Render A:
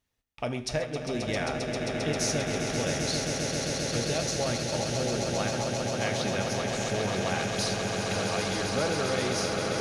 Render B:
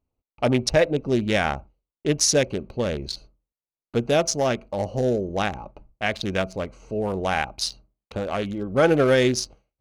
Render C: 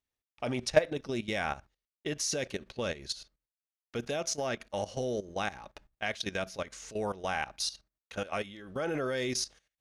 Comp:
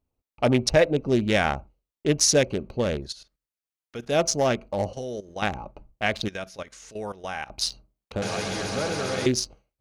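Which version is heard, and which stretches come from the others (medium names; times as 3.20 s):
B
3.04–4.13 s: from C, crossfade 0.16 s
4.93–5.42 s: from C
6.28–7.50 s: from C
8.22–9.26 s: from A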